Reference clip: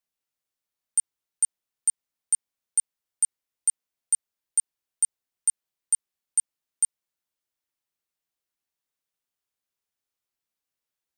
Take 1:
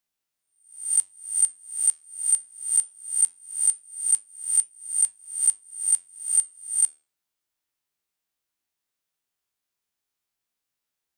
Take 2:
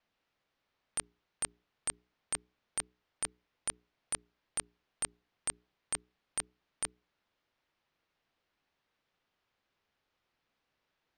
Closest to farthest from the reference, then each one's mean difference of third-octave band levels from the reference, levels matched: 1, 2; 2.0 dB, 17.0 dB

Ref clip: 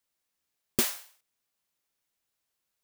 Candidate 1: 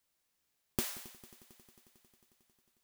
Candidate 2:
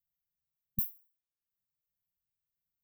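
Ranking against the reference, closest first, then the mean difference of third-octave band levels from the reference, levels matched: 1, 2; 8.0 dB, 21.0 dB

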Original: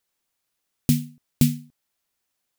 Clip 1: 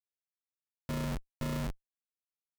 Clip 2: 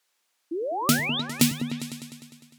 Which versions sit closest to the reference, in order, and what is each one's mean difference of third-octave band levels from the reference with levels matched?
2, 1; 14.0 dB, 19.5 dB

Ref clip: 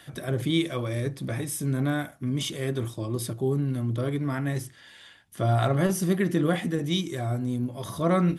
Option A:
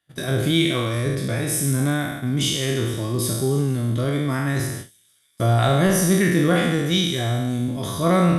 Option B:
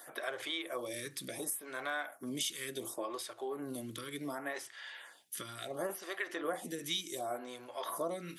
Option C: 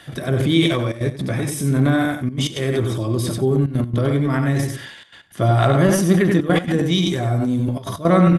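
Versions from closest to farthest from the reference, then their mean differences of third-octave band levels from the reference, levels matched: C, A, B; 4.0 dB, 6.0 dB, 10.0 dB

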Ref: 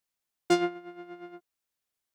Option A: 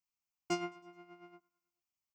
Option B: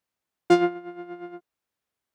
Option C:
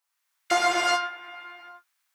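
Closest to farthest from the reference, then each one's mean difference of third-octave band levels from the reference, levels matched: B, A, C; 1.5 dB, 3.0 dB, 11.5 dB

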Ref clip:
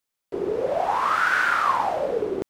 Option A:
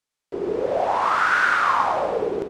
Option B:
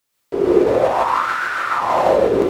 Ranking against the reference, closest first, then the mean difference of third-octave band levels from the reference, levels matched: A, B; 2.5 dB, 5.0 dB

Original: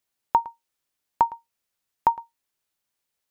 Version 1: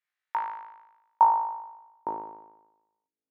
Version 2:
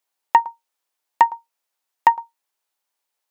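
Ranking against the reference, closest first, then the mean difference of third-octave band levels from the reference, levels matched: 2, 1; 3.0 dB, 7.0 dB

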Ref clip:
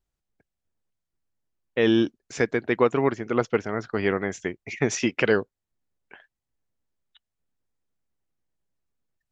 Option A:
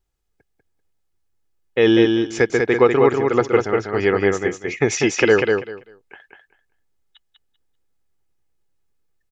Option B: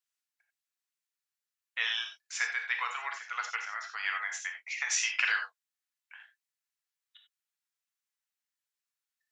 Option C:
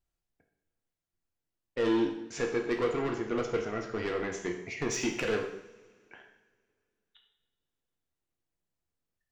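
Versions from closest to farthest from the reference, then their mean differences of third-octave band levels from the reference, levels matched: A, C, B; 4.5 dB, 7.0 dB, 16.0 dB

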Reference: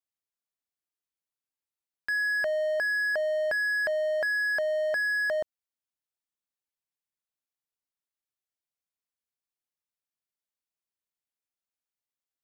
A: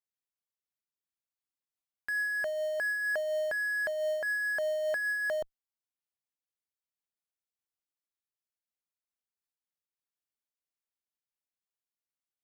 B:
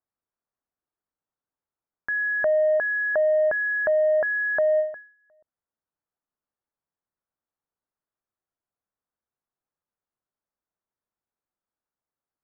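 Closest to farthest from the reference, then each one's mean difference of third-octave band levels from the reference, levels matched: A, B; 3.5 dB, 5.5 dB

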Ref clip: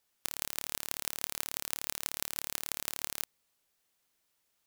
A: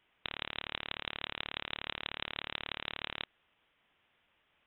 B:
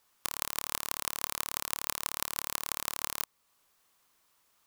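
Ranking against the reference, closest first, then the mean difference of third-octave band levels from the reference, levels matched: B, A; 1.0 dB, 16.0 dB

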